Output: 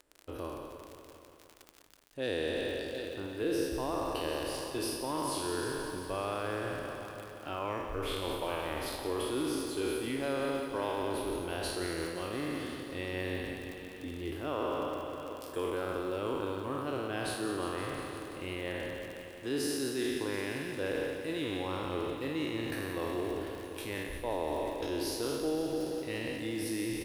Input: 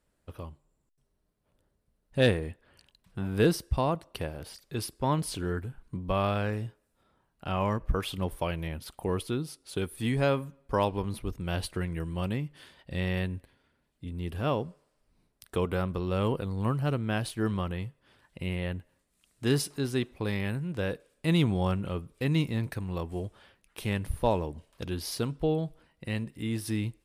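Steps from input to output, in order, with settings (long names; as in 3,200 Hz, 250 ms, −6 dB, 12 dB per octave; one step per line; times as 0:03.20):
peak hold with a decay on every bin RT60 1.54 s
single-tap delay 744 ms −22 dB
surface crackle 45 per second −36 dBFS
reversed playback
downward compressor 6 to 1, threshold −32 dBFS, peak gain reduction 14.5 dB
reversed playback
low shelf with overshoot 240 Hz −6.5 dB, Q 3
feedback echo at a low word length 174 ms, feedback 80%, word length 10 bits, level −10 dB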